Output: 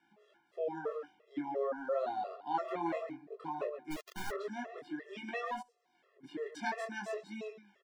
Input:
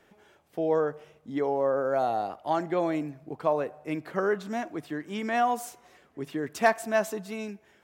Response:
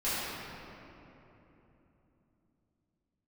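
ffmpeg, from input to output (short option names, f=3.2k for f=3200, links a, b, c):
-filter_complex "[0:a]asettb=1/sr,asplit=3[a][b][c];[a]atrim=end=2.544[d];[b]atrim=start=2.54:end=3.08,asetpts=PTS-STARTPTS,afade=t=in:d=0.004:c=qsin,afade=t=out:st=0.536:d=0.004:c=qsin,equalizer=f=930:t=o:w=1.1:g=9[e];[c]atrim=start=3.076[f];[d][e]acrossfade=d=0.004:c1=hsin:c2=qsin[g];[g][f]acrossfade=d=0.004:c1=qsin:c2=hsin,acrossover=split=370|960[h][i][j];[i]alimiter=level_in=1dB:limit=-24dB:level=0:latency=1,volume=-1dB[k];[h][k][j]amix=inputs=3:normalize=0,acrossover=split=190 7200:gain=0.0891 1 0.0794[l][m][n];[l][m][n]amix=inputs=3:normalize=0,bandreject=f=6.5k:w=11,asplit=2[o][p];[p]adelay=140,highpass=300,lowpass=3.4k,asoftclip=type=hard:threshold=-22.5dB,volume=-8dB[q];[o][q]amix=inputs=2:normalize=0,flanger=delay=18.5:depth=5.6:speed=0.54,asplit=2[r][s];[1:a]atrim=start_sample=2205,atrim=end_sample=6174[t];[s][t]afir=irnorm=-1:irlink=0,volume=-32.5dB[u];[r][u]amix=inputs=2:normalize=0,asplit=3[v][w][x];[v]afade=t=out:st=3.9:d=0.02[y];[w]acrusher=bits=3:dc=4:mix=0:aa=0.000001,afade=t=in:st=3.9:d=0.02,afade=t=out:st=4.3:d=0.02[z];[x]afade=t=in:st=4.3:d=0.02[aa];[y][z][aa]amix=inputs=3:normalize=0,asplit=3[ab][ac][ad];[ab]afade=t=out:st=5.61:d=0.02[ae];[ac]acompressor=threshold=-59dB:ratio=8,afade=t=in:st=5.61:d=0.02,afade=t=out:st=6.23:d=0.02[af];[ad]afade=t=in:st=6.23:d=0.02[ag];[ae][af][ag]amix=inputs=3:normalize=0,afftfilt=real='re*gt(sin(2*PI*2.9*pts/sr)*(1-2*mod(floor(b*sr/1024/350),2)),0)':imag='im*gt(sin(2*PI*2.9*pts/sr)*(1-2*mod(floor(b*sr/1024/350),2)),0)':win_size=1024:overlap=0.75,volume=-2.5dB"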